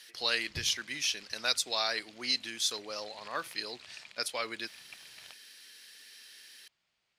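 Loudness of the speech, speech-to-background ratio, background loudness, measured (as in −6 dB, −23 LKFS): −33.0 LKFS, 19.0 dB, −52.0 LKFS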